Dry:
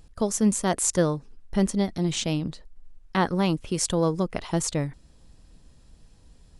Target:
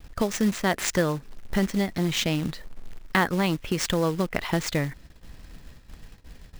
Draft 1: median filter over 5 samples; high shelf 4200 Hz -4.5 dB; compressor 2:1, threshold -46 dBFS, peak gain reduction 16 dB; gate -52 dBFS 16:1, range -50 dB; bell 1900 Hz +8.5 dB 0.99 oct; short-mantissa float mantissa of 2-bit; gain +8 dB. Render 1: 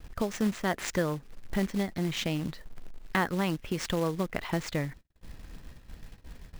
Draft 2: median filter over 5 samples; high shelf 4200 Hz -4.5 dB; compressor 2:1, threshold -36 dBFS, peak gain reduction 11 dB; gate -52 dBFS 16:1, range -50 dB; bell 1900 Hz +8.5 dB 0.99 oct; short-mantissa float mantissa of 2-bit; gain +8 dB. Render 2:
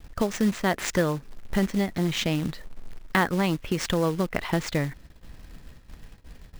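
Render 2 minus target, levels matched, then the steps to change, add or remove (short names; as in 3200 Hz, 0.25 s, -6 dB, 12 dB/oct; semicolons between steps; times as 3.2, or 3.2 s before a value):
8000 Hz band -3.0 dB
change: high shelf 4200 Hz +2 dB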